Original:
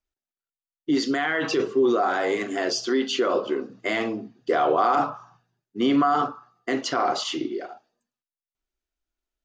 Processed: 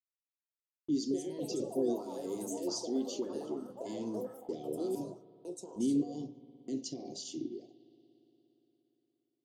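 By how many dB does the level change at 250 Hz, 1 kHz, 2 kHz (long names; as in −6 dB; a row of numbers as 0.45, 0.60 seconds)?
−9.0 dB, −26.0 dB, below −35 dB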